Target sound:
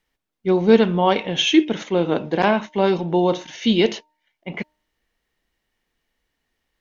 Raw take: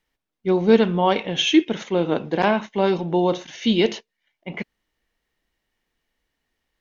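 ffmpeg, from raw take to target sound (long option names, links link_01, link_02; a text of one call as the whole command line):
ffmpeg -i in.wav -af "bandreject=frequency=305.4:width_type=h:width=4,bandreject=frequency=610.8:width_type=h:width=4,bandreject=frequency=916.2:width_type=h:width=4,volume=1.5dB" out.wav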